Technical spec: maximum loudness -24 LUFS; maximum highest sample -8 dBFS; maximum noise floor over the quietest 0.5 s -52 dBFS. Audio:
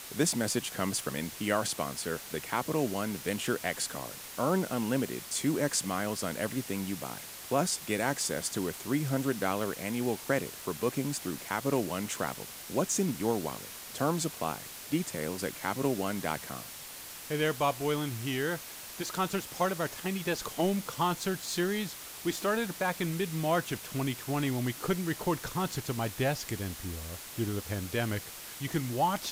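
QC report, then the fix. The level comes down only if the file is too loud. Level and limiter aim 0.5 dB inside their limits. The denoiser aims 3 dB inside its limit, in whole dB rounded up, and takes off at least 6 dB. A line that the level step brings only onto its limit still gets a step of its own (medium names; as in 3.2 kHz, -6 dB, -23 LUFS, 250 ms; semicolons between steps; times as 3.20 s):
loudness -32.5 LUFS: pass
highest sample -13.0 dBFS: pass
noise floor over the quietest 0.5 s -45 dBFS: fail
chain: noise reduction 10 dB, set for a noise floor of -45 dBFS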